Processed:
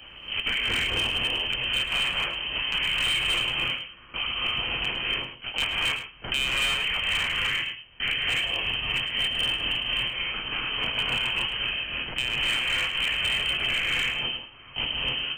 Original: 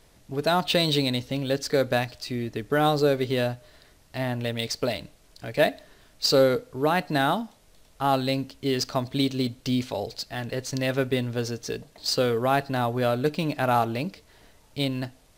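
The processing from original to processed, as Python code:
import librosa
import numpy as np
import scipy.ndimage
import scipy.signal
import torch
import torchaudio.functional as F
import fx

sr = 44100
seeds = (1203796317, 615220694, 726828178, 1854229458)

p1 = fx.cycle_switch(x, sr, every=3, mode='inverted')
p2 = scipy.signal.sosfilt(scipy.signal.butter(2, 110.0, 'highpass', fs=sr, output='sos'), p1)
p3 = fx.lpc_vocoder(p2, sr, seeds[0], excitation='pitch_kept', order=10)
p4 = fx.hum_notches(p3, sr, base_hz=50, count=8)
p5 = fx.freq_invert(p4, sr, carrier_hz=3100)
p6 = fx.rev_gated(p5, sr, seeds[1], gate_ms=310, shape='rising', drr_db=-5.0)
p7 = np.clip(p6, -10.0 ** (-13.0 / 20.0), 10.0 ** (-13.0 / 20.0))
p8 = fx.low_shelf(p7, sr, hz=150.0, db=11.5)
p9 = p8 + fx.echo_single(p8, sr, ms=107, db=-12.5, dry=0)
p10 = fx.band_squash(p9, sr, depth_pct=70)
y = F.gain(torch.from_numpy(p10), -7.5).numpy()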